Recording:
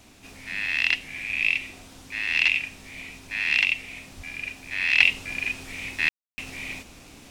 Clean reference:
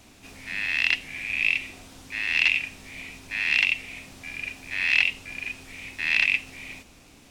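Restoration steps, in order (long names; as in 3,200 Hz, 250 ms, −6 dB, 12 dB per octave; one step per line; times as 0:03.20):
0:04.16–0:04.28: high-pass filter 140 Hz 24 dB per octave
ambience match 0:06.09–0:06.38
0:05.00: level correction −5 dB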